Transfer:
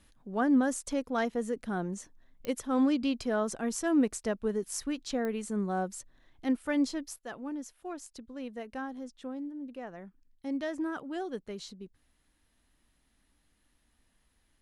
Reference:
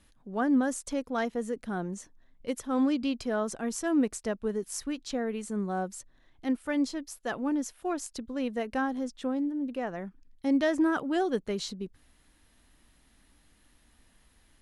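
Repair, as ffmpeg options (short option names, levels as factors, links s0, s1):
-af "adeclick=t=4,asetnsamples=n=441:p=0,asendcmd='7.16 volume volume 8.5dB',volume=1"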